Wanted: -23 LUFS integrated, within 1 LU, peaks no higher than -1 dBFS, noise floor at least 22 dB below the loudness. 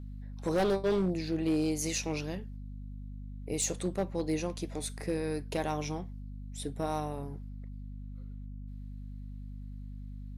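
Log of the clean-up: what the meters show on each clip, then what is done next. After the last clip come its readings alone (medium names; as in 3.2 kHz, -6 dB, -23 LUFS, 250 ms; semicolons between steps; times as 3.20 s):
clipped samples 1.0%; clipping level -23.5 dBFS; hum 50 Hz; highest harmonic 250 Hz; hum level -40 dBFS; loudness -33.5 LUFS; peak level -23.5 dBFS; loudness target -23.0 LUFS
-> clip repair -23.5 dBFS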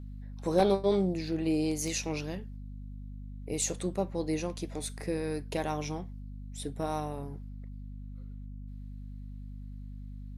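clipped samples 0.0%; hum 50 Hz; highest harmonic 250 Hz; hum level -40 dBFS
-> de-hum 50 Hz, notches 5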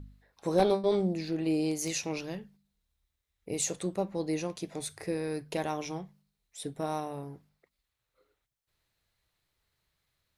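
hum not found; loudness -32.5 LUFS; peak level -14.0 dBFS; loudness target -23.0 LUFS
-> trim +9.5 dB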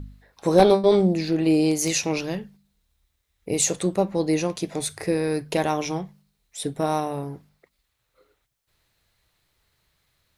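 loudness -23.0 LUFS; peak level -4.5 dBFS; noise floor -75 dBFS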